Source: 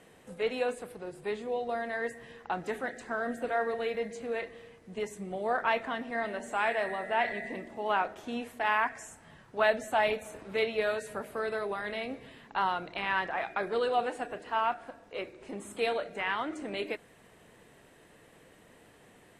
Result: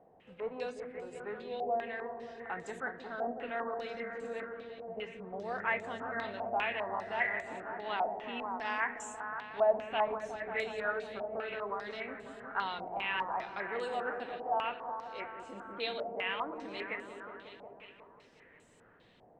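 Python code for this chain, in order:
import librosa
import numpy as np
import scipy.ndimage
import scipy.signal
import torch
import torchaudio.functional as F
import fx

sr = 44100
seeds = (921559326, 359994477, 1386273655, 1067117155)

y = fx.dmg_buzz(x, sr, base_hz=100.0, harmonics=6, level_db=-53.0, tilt_db=-2, odd_only=False, at=(5.38, 7.21), fade=0.02)
y = fx.echo_opening(y, sr, ms=181, hz=400, octaves=1, feedback_pct=70, wet_db=-3)
y = fx.filter_held_lowpass(y, sr, hz=5.0, low_hz=750.0, high_hz=7500.0)
y = y * 10.0 ** (-9.0 / 20.0)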